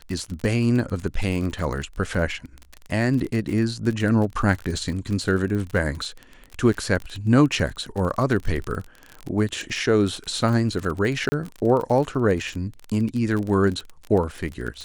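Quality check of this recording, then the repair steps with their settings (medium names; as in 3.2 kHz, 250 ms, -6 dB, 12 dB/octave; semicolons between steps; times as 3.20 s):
crackle 34 per s -27 dBFS
11.29–11.32 s: dropout 30 ms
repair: de-click; interpolate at 11.29 s, 30 ms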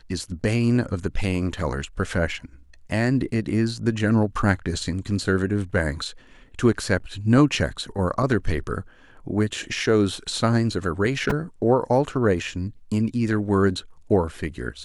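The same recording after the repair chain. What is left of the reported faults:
nothing left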